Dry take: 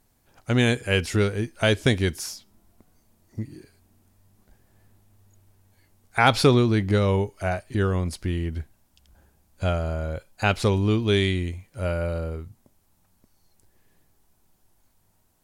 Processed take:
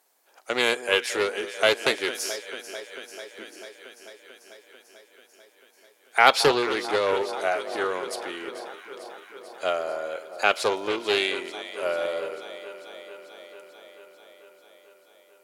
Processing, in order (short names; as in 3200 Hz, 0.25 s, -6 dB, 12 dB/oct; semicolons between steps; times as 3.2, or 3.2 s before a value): HPF 430 Hz 24 dB/oct; echo with dull and thin repeats by turns 0.221 s, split 1200 Hz, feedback 84%, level -12 dB; Doppler distortion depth 0.25 ms; gain +2.5 dB